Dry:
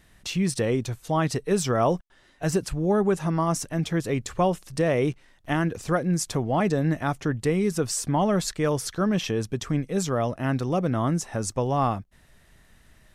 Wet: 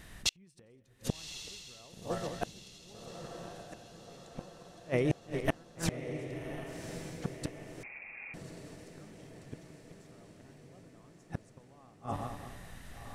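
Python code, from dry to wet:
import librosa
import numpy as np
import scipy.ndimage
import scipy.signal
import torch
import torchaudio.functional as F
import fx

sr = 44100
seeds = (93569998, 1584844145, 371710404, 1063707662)

y = fx.reverse_delay_fb(x, sr, ms=104, feedback_pct=57, wet_db=-13.0)
y = fx.over_compress(y, sr, threshold_db=-31.0, ratio=-1.0, at=(4.58, 5.5), fade=0.02)
y = fx.gate_flip(y, sr, shuts_db=-21.0, range_db=-42)
y = fx.echo_diffused(y, sr, ms=1138, feedback_pct=54, wet_db=-7.5)
y = fx.freq_invert(y, sr, carrier_hz=2600, at=(7.83, 8.34))
y = y * 10.0 ** (5.5 / 20.0)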